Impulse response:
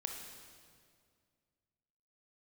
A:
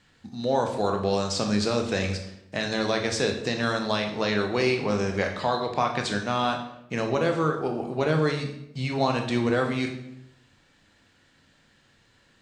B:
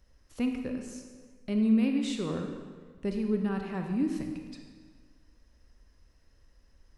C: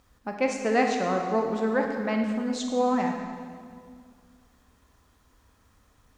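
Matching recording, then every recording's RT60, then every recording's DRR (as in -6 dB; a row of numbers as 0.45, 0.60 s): C; 0.80, 1.6, 2.1 s; 3.5, 3.5, 2.0 dB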